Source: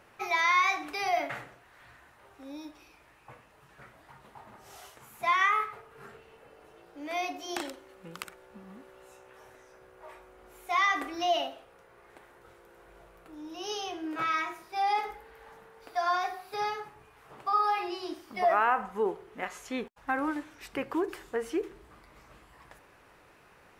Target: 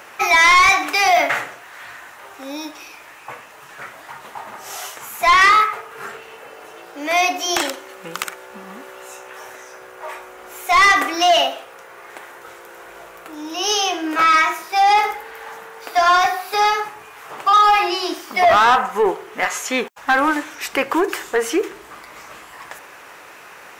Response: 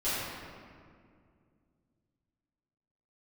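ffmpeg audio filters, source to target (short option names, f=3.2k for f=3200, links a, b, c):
-filter_complex "[0:a]aexciter=amount=1.5:drive=7.9:freq=5.9k,asplit=2[a][b];[b]highpass=f=720:p=1,volume=25dB,asoftclip=type=tanh:threshold=-4dB[c];[a][c]amix=inputs=2:normalize=0,lowpass=f=1.5k:p=1,volume=-6dB,highshelf=f=2.1k:g=11"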